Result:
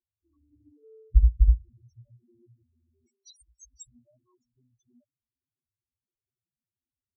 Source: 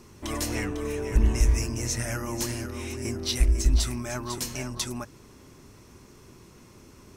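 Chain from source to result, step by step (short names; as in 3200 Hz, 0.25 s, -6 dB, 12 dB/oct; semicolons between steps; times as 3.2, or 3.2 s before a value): 3.07–3.87 tilt +4.5 dB/oct; loudest bins only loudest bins 2; upward expander 2.5:1, over -48 dBFS; gain +6.5 dB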